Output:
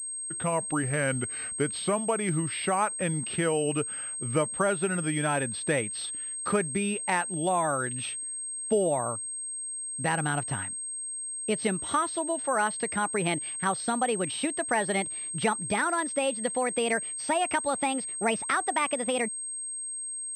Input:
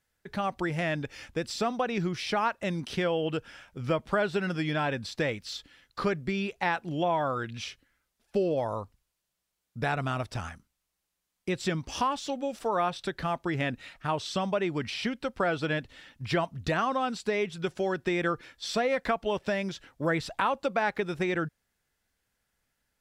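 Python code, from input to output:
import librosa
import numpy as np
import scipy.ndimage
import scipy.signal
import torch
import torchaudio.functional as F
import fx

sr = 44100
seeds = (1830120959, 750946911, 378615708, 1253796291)

p1 = fx.speed_glide(x, sr, from_pct=83, to_pct=143)
p2 = scipy.signal.sosfilt(scipy.signal.butter(2, 91.0, 'highpass', fs=sr, output='sos'), p1)
p3 = fx.rider(p2, sr, range_db=5, speed_s=0.5)
p4 = p2 + (p3 * librosa.db_to_amplitude(1.0))
p5 = fx.pwm(p4, sr, carrier_hz=8400.0)
y = p5 * librosa.db_to_amplitude(-5.0)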